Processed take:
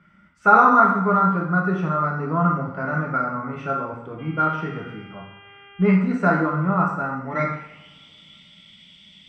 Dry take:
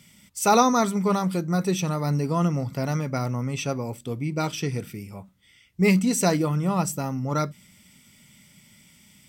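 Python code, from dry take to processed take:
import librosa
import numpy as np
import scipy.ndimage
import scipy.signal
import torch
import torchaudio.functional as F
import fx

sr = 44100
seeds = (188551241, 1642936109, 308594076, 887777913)

y = fx.filter_sweep_lowpass(x, sr, from_hz=1400.0, to_hz=3400.0, start_s=6.98, end_s=7.99, q=7.6)
y = fx.rev_double_slope(y, sr, seeds[0], early_s=0.74, late_s=2.9, knee_db=-26, drr_db=-1.5)
y = fx.dmg_buzz(y, sr, base_hz=400.0, harmonics=8, level_db=-43.0, tilt_db=0, odd_only=False, at=(4.18, 5.95), fade=0.02)
y = y * 10.0 ** (-4.5 / 20.0)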